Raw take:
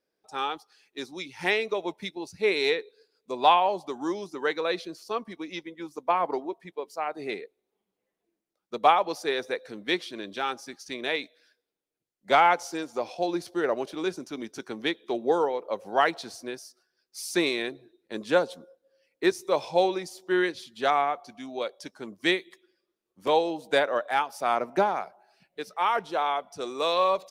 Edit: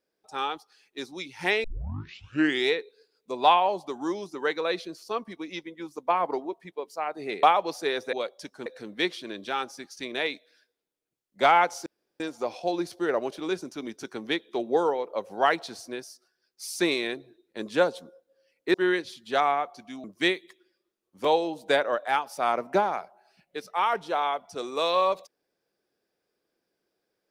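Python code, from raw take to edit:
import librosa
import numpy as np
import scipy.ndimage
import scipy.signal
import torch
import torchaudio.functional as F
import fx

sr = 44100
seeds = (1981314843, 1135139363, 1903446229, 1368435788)

y = fx.edit(x, sr, fx.tape_start(start_s=1.64, length_s=1.07),
    fx.cut(start_s=7.43, length_s=1.42),
    fx.insert_room_tone(at_s=12.75, length_s=0.34),
    fx.cut(start_s=19.29, length_s=0.95),
    fx.move(start_s=21.54, length_s=0.53, to_s=9.55), tone=tone)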